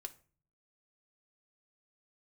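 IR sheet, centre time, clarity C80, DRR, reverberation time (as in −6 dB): 4 ms, 23.0 dB, 4.5 dB, 0.40 s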